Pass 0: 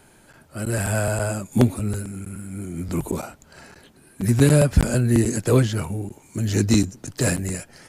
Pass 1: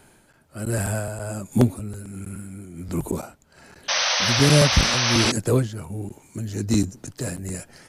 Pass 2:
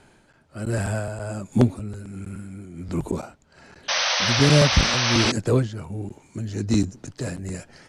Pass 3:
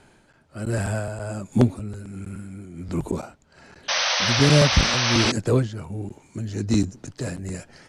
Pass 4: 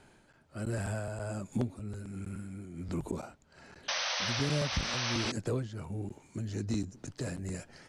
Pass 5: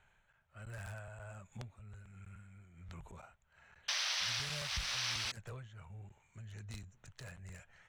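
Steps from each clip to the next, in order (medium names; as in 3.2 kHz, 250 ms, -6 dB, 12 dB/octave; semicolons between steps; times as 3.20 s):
dynamic bell 2.5 kHz, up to -4 dB, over -42 dBFS, Q 0.82; tremolo 1.3 Hz, depth 62%; painted sound noise, 3.88–5.32 s, 480–6300 Hz -22 dBFS
low-pass 6.2 kHz 12 dB/octave
no audible change
compression 2.5:1, threshold -27 dBFS, peak gain reduction 11 dB; trim -5.5 dB
local Wiener filter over 9 samples; amplifier tone stack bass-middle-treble 10-0-10; trim +1 dB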